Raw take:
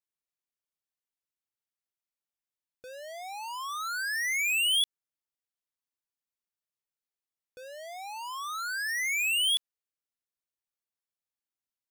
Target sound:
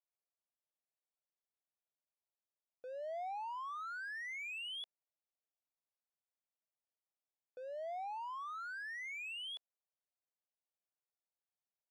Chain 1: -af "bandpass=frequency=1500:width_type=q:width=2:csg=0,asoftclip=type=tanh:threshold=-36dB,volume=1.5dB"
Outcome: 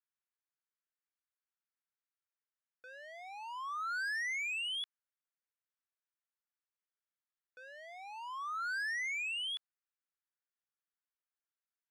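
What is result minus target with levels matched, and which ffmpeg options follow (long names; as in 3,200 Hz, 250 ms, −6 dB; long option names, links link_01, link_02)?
500 Hz band −17.5 dB
-af "bandpass=frequency=650:width_type=q:width=2:csg=0,asoftclip=type=tanh:threshold=-36dB,volume=1.5dB"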